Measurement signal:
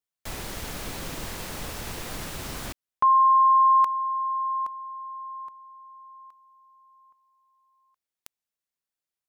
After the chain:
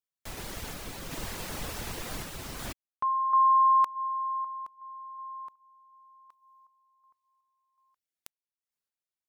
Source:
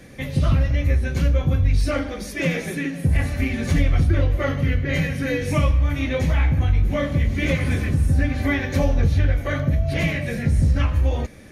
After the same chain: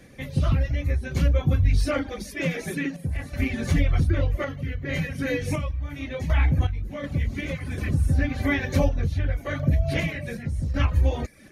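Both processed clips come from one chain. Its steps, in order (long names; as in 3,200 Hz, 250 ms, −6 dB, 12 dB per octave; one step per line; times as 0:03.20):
reverb reduction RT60 0.53 s
sample-and-hold tremolo 2.7 Hz, depth 70%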